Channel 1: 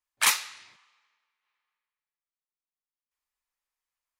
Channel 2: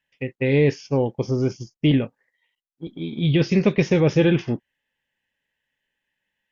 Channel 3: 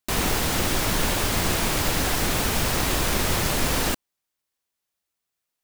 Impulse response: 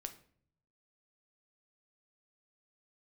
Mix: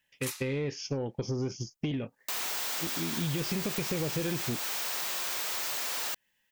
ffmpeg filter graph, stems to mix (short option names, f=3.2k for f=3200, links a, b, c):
-filter_complex "[0:a]volume=-15dB[a];[1:a]acompressor=threshold=-21dB:ratio=12,volume=0.5dB[b];[2:a]highpass=690,equalizer=f=11k:w=1.5:g=-12.5,asoftclip=type=tanh:threshold=-28dB,adelay=2200,volume=-3.5dB[c];[a][b][c]amix=inputs=3:normalize=0,highshelf=f=4.9k:g=10.5,asoftclip=type=tanh:threshold=-17dB,acompressor=threshold=-32dB:ratio=2.5"